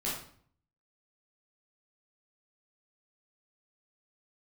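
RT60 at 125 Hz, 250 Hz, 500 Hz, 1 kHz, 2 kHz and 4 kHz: 0.80, 0.70, 0.55, 0.55, 0.50, 0.45 seconds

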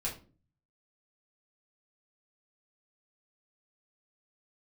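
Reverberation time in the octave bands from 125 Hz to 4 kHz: 0.85, 0.55, 0.45, 0.30, 0.30, 0.25 seconds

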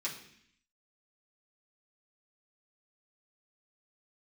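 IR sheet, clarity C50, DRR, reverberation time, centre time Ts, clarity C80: 8.0 dB, −7.0 dB, 0.65 s, 24 ms, 11.0 dB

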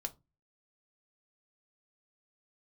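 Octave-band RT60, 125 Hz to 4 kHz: 0.45, 0.35, 0.25, 0.20, 0.15, 0.15 seconds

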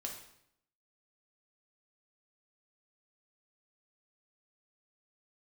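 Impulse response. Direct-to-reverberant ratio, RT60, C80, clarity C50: 0.0 dB, 0.70 s, 9.0 dB, 6.0 dB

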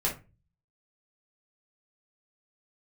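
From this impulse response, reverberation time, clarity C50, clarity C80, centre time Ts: 0.30 s, 10.0 dB, 18.0 dB, 20 ms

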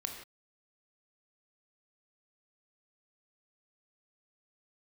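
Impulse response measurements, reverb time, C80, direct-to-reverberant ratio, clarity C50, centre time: non-exponential decay, 7.0 dB, 2.5 dB, 5.0 dB, 31 ms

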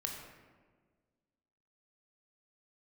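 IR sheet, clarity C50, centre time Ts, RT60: 3.0 dB, 54 ms, 1.6 s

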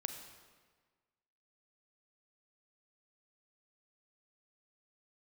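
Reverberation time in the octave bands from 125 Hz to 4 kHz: 1.5, 1.5, 1.5, 1.5, 1.4, 1.2 seconds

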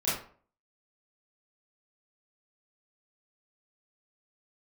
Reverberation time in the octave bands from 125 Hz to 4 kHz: 0.45, 0.45, 0.50, 0.45, 0.40, 0.30 seconds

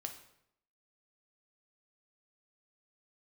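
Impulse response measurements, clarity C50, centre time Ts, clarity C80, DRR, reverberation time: 9.0 dB, 15 ms, 12.5 dB, 4.0 dB, 0.75 s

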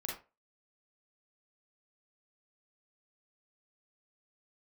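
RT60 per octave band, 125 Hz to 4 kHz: 0.25, 0.25, 0.30, 0.30, 0.25, 0.20 seconds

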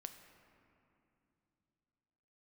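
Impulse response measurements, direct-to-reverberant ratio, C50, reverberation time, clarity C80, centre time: 7.0 dB, 8.5 dB, 2.9 s, 9.5 dB, 31 ms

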